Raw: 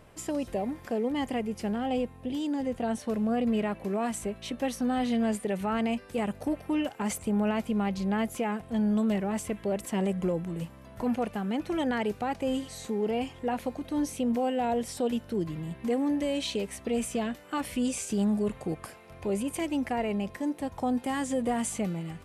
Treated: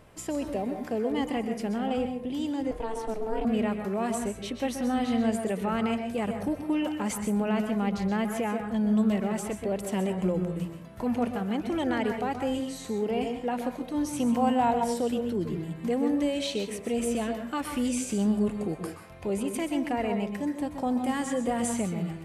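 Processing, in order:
0:14.13–0:14.71: graphic EQ with 10 bands 125 Hz +11 dB, 500 Hz −4 dB, 1,000 Hz +11 dB, 8,000 Hz +5 dB
on a send at −6 dB: convolution reverb RT60 0.35 s, pre-delay 118 ms
0:02.71–0:03.45: on the sum: ring modulation 220 Hz

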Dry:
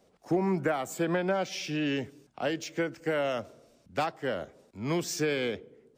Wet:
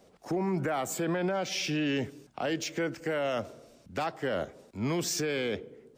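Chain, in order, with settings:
brickwall limiter −27.5 dBFS, peak gain reduction 10 dB
level +5 dB

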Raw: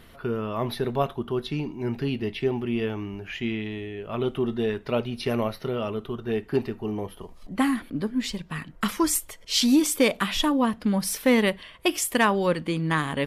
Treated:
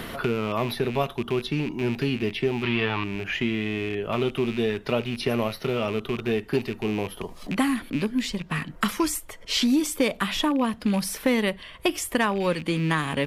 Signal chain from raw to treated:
loose part that buzzes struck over −36 dBFS, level −30 dBFS
0:02.63–0:03.04: octave-band graphic EQ 125/250/500/1,000/2,000/4,000/8,000 Hz +4/−3/−3/+12/+5/+12/−11 dB
multiband upward and downward compressor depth 70%

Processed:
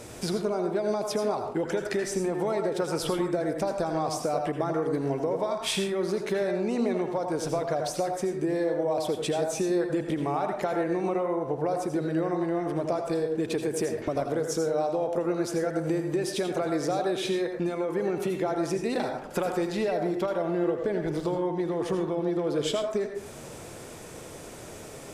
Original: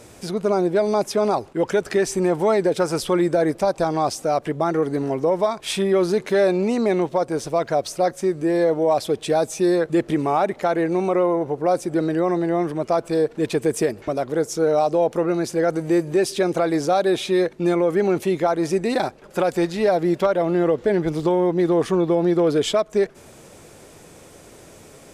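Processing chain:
downward compressor 10 to 1, threshold −27 dBFS, peak gain reduction 13.5 dB
on a send: convolution reverb RT60 0.55 s, pre-delay 72 ms, DRR 4 dB
on the sum: level +1.5 dB

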